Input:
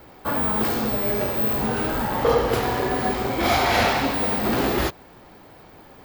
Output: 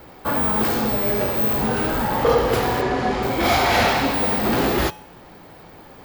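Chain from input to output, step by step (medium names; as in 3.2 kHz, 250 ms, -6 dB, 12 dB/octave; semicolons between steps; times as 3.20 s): 2.81–3.23 s: Bessel low-pass 6.3 kHz, order 8; feedback comb 170 Hz, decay 0.63 s, harmonics odd, mix 60%; in parallel at -7 dB: saturation -27.5 dBFS, distortion -12 dB; on the sum: trim +7.5 dB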